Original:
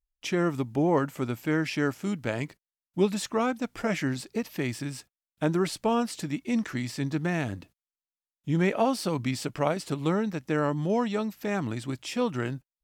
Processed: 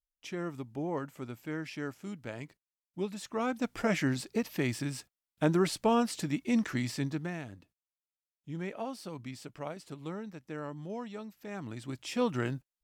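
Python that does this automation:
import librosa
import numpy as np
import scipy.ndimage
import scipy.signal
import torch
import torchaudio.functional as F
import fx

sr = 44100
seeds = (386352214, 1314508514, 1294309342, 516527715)

y = fx.gain(x, sr, db=fx.line((3.2, -11.0), (3.64, -1.0), (6.94, -1.0), (7.48, -13.5), (11.42, -13.5), (12.23, -2.0)))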